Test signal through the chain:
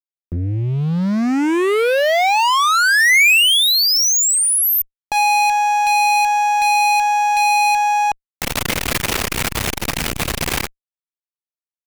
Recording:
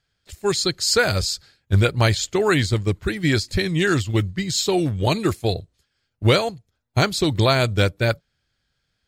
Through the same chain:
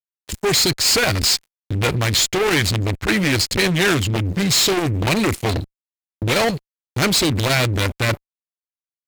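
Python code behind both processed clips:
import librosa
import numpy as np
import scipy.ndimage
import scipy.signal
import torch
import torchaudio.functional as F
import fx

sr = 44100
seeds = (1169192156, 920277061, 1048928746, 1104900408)

y = fx.law_mismatch(x, sr, coded='mu')
y = fx.fuzz(y, sr, gain_db=32.0, gate_db=-39.0)
y = fx.dynamic_eq(y, sr, hz=2300.0, q=1.6, threshold_db=-34.0, ratio=4.0, max_db=5)
y = fx.transformer_sat(y, sr, knee_hz=300.0)
y = y * librosa.db_to_amplitude(-1.5)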